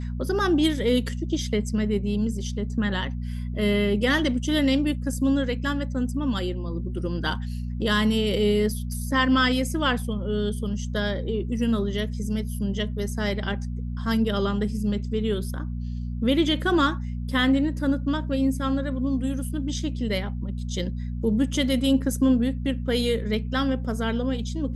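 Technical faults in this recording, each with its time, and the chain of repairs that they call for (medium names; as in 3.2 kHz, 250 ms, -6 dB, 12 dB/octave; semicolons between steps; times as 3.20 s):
hum 60 Hz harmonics 4 -30 dBFS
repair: de-hum 60 Hz, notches 4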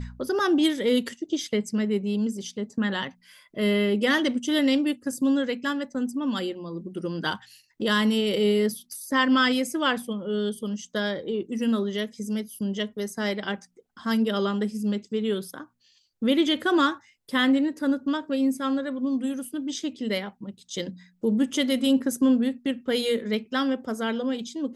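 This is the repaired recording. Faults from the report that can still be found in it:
nothing left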